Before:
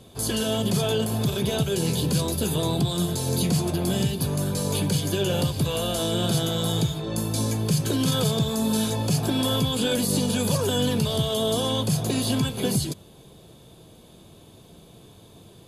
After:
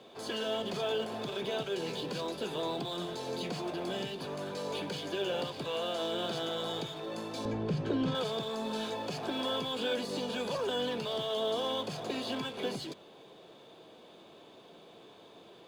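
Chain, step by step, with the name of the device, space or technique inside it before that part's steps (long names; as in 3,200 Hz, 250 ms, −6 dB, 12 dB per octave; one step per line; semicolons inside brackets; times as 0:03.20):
phone line with mismatched companding (band-pass filter 390–3,300 Hz; mu-law and A-law mismatch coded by mu)
0:07.45–0:08.15: RIAA equalisation playback
level −6 dB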